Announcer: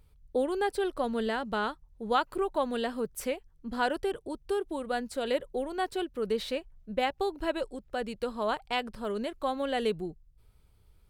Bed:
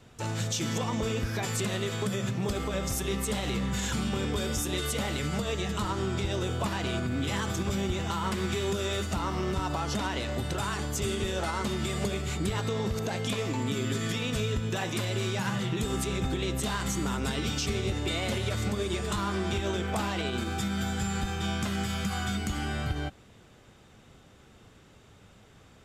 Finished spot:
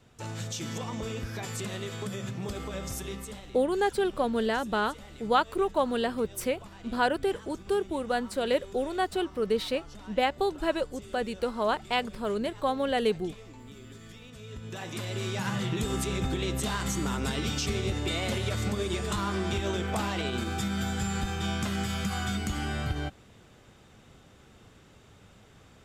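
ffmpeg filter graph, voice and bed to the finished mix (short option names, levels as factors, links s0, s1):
-filter_complex "[0:a]adelay=3200,volume=1.41[s0];[1:a]volume=4.22,afade=t=out:st=2.98:d=0.5:silence=0.237137,afade=t=in:st=14.39:d=1.21:silence=0.133352[s1];[s0][s1]amix=inputs=2:normalize=0"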